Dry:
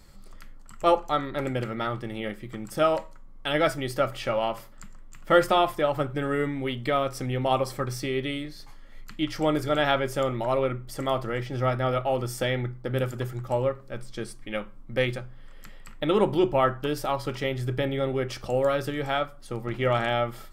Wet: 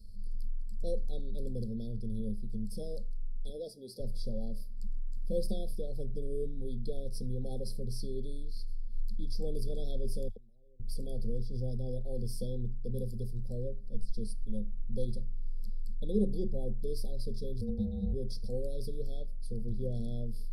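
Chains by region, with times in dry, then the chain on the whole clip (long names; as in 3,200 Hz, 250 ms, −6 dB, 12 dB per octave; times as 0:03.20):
0:03.49–0:04.00: high-pass filter 300 Hz + high-shelf EQ 3,700 Hz −6 dB + one half of a high-frequency compander encoder only
0:10.28–0:10.80: all-pass dispersion lows, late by 86 ms, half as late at 2,100 Hz + gate with flip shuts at −24 dBFS, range −30 dB
0:17.61–0:18.13: high-shelf EQ 4,800 Hz −10.5 dB + ring modulation 350 Hz
whole clip: EQ curve with evenly spaced ripples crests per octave 0.89, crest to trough 17 dB; brick-wall band-stop 790–3,300 Hz; guitar amp tone stack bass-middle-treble 10-0-1; level +8 dB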